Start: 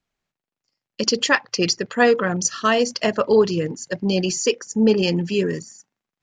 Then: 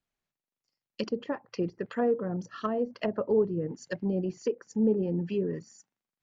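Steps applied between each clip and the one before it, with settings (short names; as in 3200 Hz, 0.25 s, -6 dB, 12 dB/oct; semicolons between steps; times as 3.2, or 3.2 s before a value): treble ducked by the level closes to 560 Hz, closed at -16 dBFS; gain -8 dB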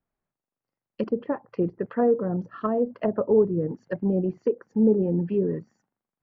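LPF 1300 Hz 12 dB/oct; gain +5.5 dB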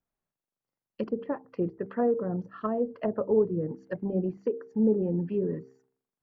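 de-hum 65.35 Hz, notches 7; gain -4 dB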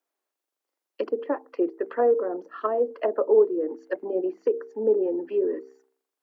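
steep high-pass 290 Hz 48 dB/oct; gain +6 dB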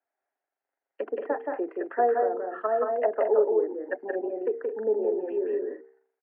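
speaker cabinet 320–2100 Hz, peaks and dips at 340 Hz -5 dB, 500 Hz -5 dB, 730 Hz +6 dB, 1100 Hz -8 dB, 1700 Hz +4 dB; loudspeakers at several distances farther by 60 m -3 dB, 75 m -10 dB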